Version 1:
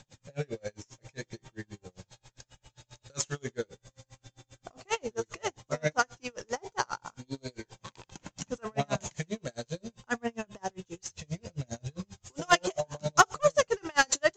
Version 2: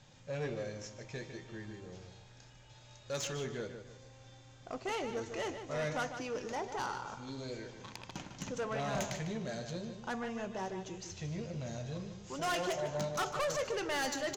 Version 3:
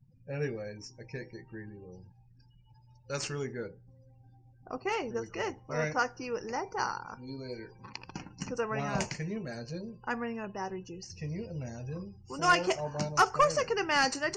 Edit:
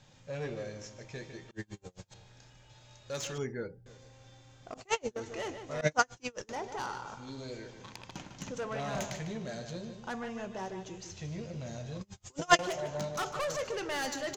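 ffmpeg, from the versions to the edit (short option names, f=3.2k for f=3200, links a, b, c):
-filter_complex "[0:a]asplit=4[a][b][c][d];[1:a]asplit=6[e][f][g][h][i][j];[e]atrim=end=1.512[k];[a]atrim=start=1.508:end=2.142[l];[f]atrim=start=2.138:end=3.382[m];[2:a]atrim=start=3.378:end=3.862[n];[g]atrim=start=3.858:end=4.742[o];[b]atrim=start=4.738:end=5.162[p];[h]atrim=start=5.158:end=5.812[q];[c]atrim=start=5.808:end=6.492[r];[i]atrim=start=6.488:end=12.012[s];[d]atrim=start=12.008:end=12.592[t];[j]atrim=start=12.588[u];[k][l]acrossfade=d=0.004:c1=hsin:c2=hsin[v];[v][m]acrossfade=d=0.004:c1=hsin:c2=hsin[w];[w][n]acrossfade=d=0.004:c1=hsin:c2=hsin[x];[x][o]acrossfade=d=0.004:c1=hsin:c2=hsin[y];[y][p]acrossfade=d=0.004:c1=hsin:c2=hsin[z];[z][q]acrossfade=d=0.004:c1=hsin:c2=hsin[aa];[aa][r]acrossfade=d=0.004:c1=hsin:c2=hsin[ab];[ab][s]acrossfade=d=0.004:c1=hsin:c2=hsin[ac];[ac][t]acrossfade=d=0.004:c1=hsin:c2=hsin[ad];[ad][u]acrossfade=d=0.004:c1=hsin:c2=hsin"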